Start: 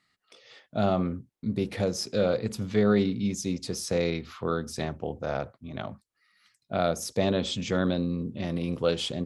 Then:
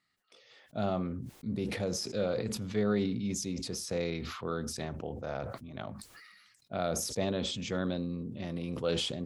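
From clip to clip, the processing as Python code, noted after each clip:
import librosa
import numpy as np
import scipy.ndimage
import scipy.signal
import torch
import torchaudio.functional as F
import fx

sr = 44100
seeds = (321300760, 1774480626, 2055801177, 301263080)

y = fx.sustainer(x, sr, db_per_s=36.0)
y = F.gain(torch.from_numpy(y), -7.0).numpy()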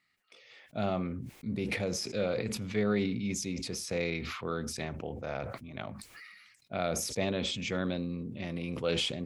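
y = fx.peak_eq(x, sr, hz=2300.0, db=8.5, octaves=0.57)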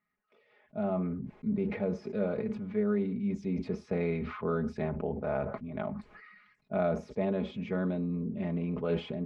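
y = scipy.signal.sosfilt(scipy.signal.butter(2, 1200.0, 'lowpass', fs=sr, output='sos'), x)
y = y + 0.71 * np.pad(y, (int(4.8 * sr / 1000.0), 0))[:len(y)]
y = fx.rider(y, sr, range_db=4, speed_s=0.5)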